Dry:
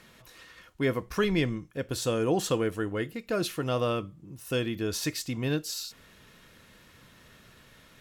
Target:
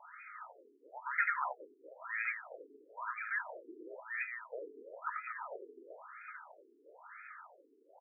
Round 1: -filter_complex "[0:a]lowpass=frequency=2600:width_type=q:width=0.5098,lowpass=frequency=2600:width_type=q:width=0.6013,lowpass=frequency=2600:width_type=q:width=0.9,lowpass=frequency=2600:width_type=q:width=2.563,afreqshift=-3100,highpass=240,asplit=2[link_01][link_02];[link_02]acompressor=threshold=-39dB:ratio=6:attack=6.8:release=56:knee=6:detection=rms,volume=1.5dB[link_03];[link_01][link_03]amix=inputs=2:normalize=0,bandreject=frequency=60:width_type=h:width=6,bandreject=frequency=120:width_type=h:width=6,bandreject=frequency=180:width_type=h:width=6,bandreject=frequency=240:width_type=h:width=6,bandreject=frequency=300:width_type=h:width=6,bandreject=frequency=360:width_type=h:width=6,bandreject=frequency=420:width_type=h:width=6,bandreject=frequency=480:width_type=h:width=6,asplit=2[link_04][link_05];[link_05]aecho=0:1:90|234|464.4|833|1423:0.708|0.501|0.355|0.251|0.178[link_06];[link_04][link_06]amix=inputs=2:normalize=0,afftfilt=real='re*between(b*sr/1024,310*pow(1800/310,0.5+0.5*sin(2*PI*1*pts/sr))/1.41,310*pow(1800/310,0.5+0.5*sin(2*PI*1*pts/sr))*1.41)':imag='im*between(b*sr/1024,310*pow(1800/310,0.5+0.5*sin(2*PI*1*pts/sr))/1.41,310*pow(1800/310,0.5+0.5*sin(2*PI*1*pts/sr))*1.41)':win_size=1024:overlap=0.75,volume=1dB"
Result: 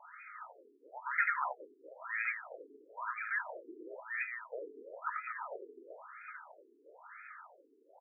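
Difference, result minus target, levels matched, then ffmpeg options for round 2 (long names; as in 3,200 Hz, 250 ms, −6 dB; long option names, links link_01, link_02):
downward compressor: peak gain reduction −8 dB
-filter_complex "[0:a]lowpass=frequency=2600:width_type=q:width=0.5098,lowpass=frequency=2600:width_type=q:width=0.6013,lowpass=frequency=2600:width_type=q:width=0.9,lowpass=frequency=2600:width_type=q:width=2.563,afreqshift=-3100,highpass=240,asplit=2[link_01][link_02];[link_02]acompressor=threshold=-48.5dB:ratio=6:attack=6.8:release=56:knee=6:detection=rms,volume=1.5dB[link_03];[link_01][link_03]amix=inputs=2:normalize=0,bandreject=frequency=60:width_type=h:width=6,bandreject=frequency=120:width_type=h:width=6,bandreject=frequency=180:width_type=h:width=6,bandreject=frequency=240:width_type=h:width=6,bandreject=frequency=300:width_type=h:width=6,bandreject=frequency=360:width_type=h:width=6,bandreject=frequency=420:width_type=h:width=6,bandreject=frequency=480:width_type=h:width=6,asplit=2[link_04][link_05];[link_05]aecho=0:1:90|234|464.4|833|1423:0.708|0.501|0.355|0.251|0.178[link_06];[link_04][link_06]amix=inputs=2:normalize=0,afftfilt=real='re*between(b*sr/1024,310*pow(1800/310,0.5+0.5*sin(2*PI*1*pts/sr))/1.41,310*pow(1800/310,0.5+0.5*sin(2*PI*1*pts/sr))*1.41)':imag='im*between(b*sr/1024,310*pow(1800/310,0.5+0.5*sin(2*PI*1*pts/sr))/1.41,310*pow(1800/310,0.5+0.5*sin(2*PI*1*pts/sr))*1.41)':win_size=1024:overlap=0.75,volume=1dB"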